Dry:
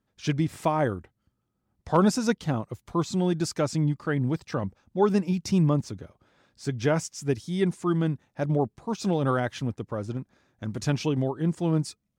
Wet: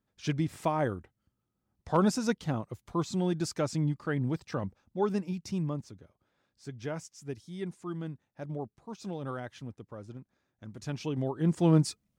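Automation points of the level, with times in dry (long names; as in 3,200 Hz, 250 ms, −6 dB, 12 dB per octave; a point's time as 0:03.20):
0:04.63 −4.5 dB
0:05.98 −12.5 dB
0:10.78 −12.5 dB
0:11.22 −5.5 dB
0:11.64 +2 dB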